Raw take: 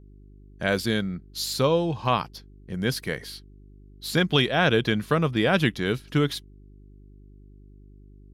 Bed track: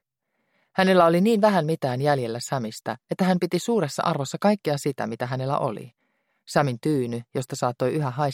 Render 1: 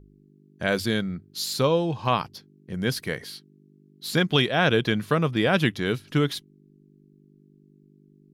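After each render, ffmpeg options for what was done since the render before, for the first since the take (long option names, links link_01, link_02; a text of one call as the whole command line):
ffmpeg -i in.wav -af "bandreject=frequency=50:width_type=h:width=4,bandreject=frequency=100:width_type=h:width=4" out.wav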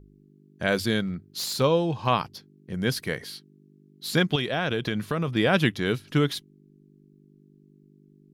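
ffmpeg -i in.wav -filter_complex "[0:a]asplit=3[link_01][link_02][link_03];[link_01]afade=type=out:start_time=1.05:duration=0.02[link_04];[link_02]aeval=exprs='0.0596*(abs(mod(val(0)/0.0596+3,4)-2)-1)':channel_layout=same,afade=type=in:start_time=1.05:duration=0.02,afade=type=out:start_time=1.59:duration=0.02[link_05];[link_03]afade=type=in:start_time=1.59:duration=0.02[link_06];[link_04][link_05][link_06]amix=inputs=3:normalize=0,asettb=1/sr,asplit=3[link_07][link_08][link_09];[link_07]atrim=end=4.354[link_10];[link_08]atrim=start=4.35:end=5.28,asetpts=PTS-STARTPTS,afade=type=in:duration=0.004:curve=qsin,afade=type=out:start_time=0.926:duration=0.004:curve=qsin,acompressor=threshold=-22dB:ratio=6:attack=3.2:release=140:knee=1:detection=peak[link_11];[link_09]atrim=start=5.276[link_12];[link_10][link_11]acrossfade=duration=0.004:curve1=hsin:curve2=qsin[link_13];[link_13][link_12]acrossfade=duration=0.004:curve1=qsin:curve2=hsin" out.wav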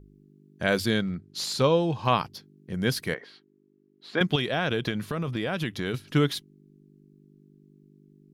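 ffmpeg -i in.wav -filter_complex "[0:a]asettb=1/sr,asplit=3[link_01][link_02][link_03];[link_01]atrim=end=0.904[link_04];[link_02]atrim=start=0.9:end=1.83,asetpts=PTS-STARTPTS,afade=type=in:duration=0.004:curve=qsin,afade=type=out:start_time=0.926:duration=0.004:curve=qsin,lowpass=9100[link_05];[link_03]atrim=start=1.826[link_06];[link_04][link_05]acrossfade=duration=0.004:curve1=hsin:curve2=qsin[link_07];[link_07][link_06]acrossfade=duration=0.004:curve1=qsin:curve2=hsin,asettb=1/sr,asplit=3[link_08][link_09][link_10];[link_08]atrim=end=3.144[link_11];[link_09]atrim=start=3.14:end=4.21,asetpts=PTS-STARTPTS,afade=type=in:duration=0.004:curve=qsin,afade=type=out:start_time=1.066:duration=0.004:curve=qsin,highpass=370,lowpass=2100[link_12];[link_10]atrim=start=4.206[link_13];[link_11][link_12]acrossfade=duration=0.004:curve1=hsin:curve2=qsin[link_14];[link_14][link_13]acrossfade=duration=0.004:curve1=qsin:curve2=hsin,asettb=1/sr,asplit=3[link_15][link_16][link_17];[link_15]atrim=end=4.904[link_18];[link_16]atrim=start=4.9:end=5.94,asetpts=PTS-STARTPTS,afade=type=in:duration=0.004:curve=qsin,afade=type=out:start_time=1.036:duration=0.004:curve=qsin,acompressor=threshold=-25dB:ratio=6:attack=3.2:release=140:knee=1:detection=peak[link_19];[link_17]atrim=start=5.936[link_20];[link_18][link_19]acrossfade=duration=0.004:curve1=hsin:curve2=qsin[link_21];[link_21][link_20]acrossfade=duration=0.004:curve1=qsin:curve2=hsin" out.wav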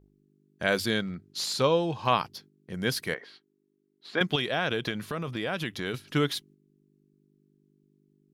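ffmpeg -i in.wav -af "agate=range=-6dB:threshold=-51dB:ratio=16:detection=peak,lowshelf=frequency=300:gain=-6.5" out.wav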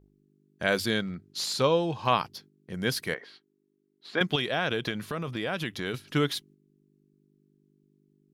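ffmpeg -i in.wav -af anull out.wav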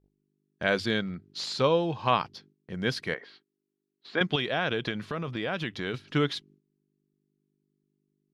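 ffmpeg -i in.wav -af "lowpass=4800,agate=range=-11dB:threshold=-59dB:ratio=16:detection=peak" out.wav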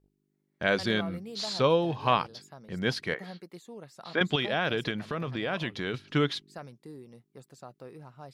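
ffmpeg -i in.wav -i bed.wav -filter_complex "[1:a]volume=-22.5dB[link_01];[0:a][link_01]amix=inputs=2:normalize=0" out.wav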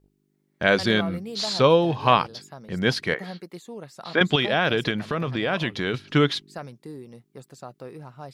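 ffmpeg -i in.wav -af "volume=6.5dB" out.wav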